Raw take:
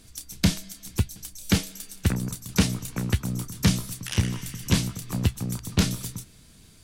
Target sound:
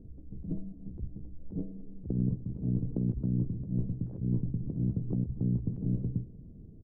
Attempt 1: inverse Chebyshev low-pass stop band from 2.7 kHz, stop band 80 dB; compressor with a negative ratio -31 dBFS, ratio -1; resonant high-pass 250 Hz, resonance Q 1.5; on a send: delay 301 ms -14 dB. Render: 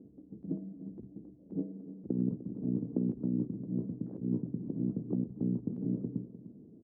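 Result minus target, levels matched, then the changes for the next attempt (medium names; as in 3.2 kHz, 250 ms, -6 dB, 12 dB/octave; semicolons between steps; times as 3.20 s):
echo-to-direct +9 dB; 250 Hz band +3.0 dB
change: delay 301 ms -23 dB; remove: resonant high-pass 250 Hz, resonance Q 1.5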